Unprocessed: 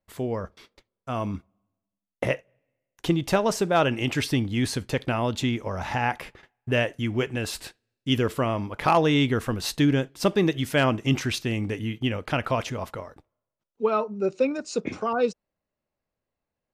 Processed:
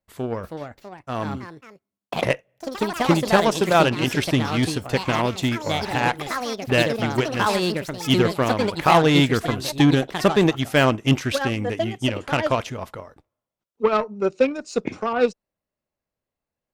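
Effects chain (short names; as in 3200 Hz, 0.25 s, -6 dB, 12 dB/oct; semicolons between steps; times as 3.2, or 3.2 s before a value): added harmonics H 7 -23 dB, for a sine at -10 dBFS; echoes that change speed 0.361 s, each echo +4 st, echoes 3, each echo -6 dB; gain +4.5 dB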